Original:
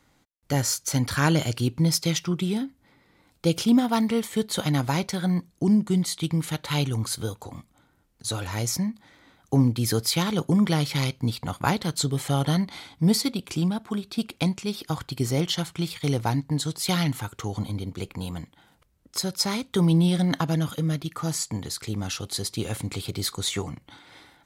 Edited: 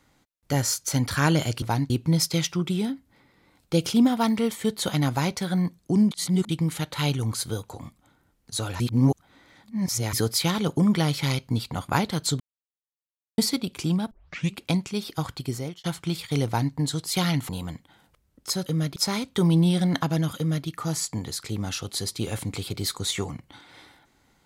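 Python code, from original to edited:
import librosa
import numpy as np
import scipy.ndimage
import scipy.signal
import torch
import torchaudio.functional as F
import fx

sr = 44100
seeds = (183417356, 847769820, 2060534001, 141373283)

y = fx.edit(x, sr, fx.reverse_span(start_s=5.83, length_s=0.38),
    fx.reverse_span(start_s=8.52, length_s=1.33),
    fx.silence(start_s=12.12, length_s=0.98),
    fx.tape_start(start_s=13.83, length_s=0.47),
    fx.fade_out_span(start_s=15.05, length_s=0.51),
    fx.duplicate(start_s=16.18, length_s=0.28, to_s=1.62),
    fx.cut(start_s=17.21, length_s=0.96),
    fx.duplicate(start_s=20.75, length_s=0.3, to_s=19.34), tone=tone)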